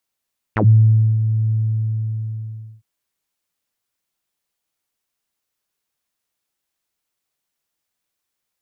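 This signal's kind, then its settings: synth note saw A2 12 dB/oct, low-pass 120 Hz, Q 6.1, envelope 4.5 oct, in 0.09 s, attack 3.2 ms, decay 0.62 s, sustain -9.5 dB, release 1.31 s, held 0.95 s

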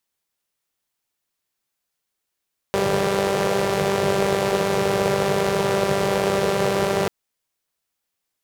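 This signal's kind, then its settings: four-cylinder engine model, steady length 4.34 s, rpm 5900, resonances 150/440 Hz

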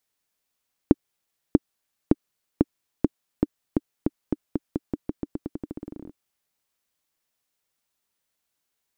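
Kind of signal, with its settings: bouncing ball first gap 0.64 s, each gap 0.88, 297 Hz, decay 32 ms -1.5 dBFS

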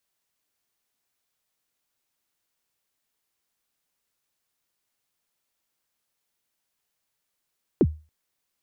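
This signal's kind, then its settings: kick drum length 0.28 s, from 450 Hz, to 77 Hz, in 50 ms, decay 0.31 s, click off, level -11 dB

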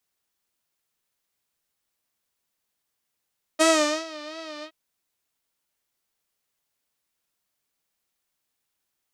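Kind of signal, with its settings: synth patch with vibrato D#5, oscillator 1 saw, detune 24 cents, sub -9 dB, noise -27.5 dB, filter lowpass, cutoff 3100 Hz, Q 2.1, filter envelope 1.5 oct, filter decay 0.57 s, attack 23 ms, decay 0.43 s, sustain -21 dB, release 0.07 s, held 1.05 s, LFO 2.8 Hz, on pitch 77 cents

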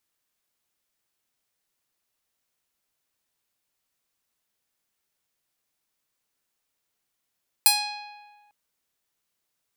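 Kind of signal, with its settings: plucked string G#5, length 0.85 s, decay 1.51 s, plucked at 0.47, bright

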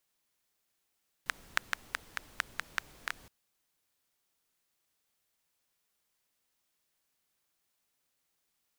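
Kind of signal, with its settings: rain from filtered ticks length 2.02 s, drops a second 5.1, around 1600 Hz, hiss -15.5 dB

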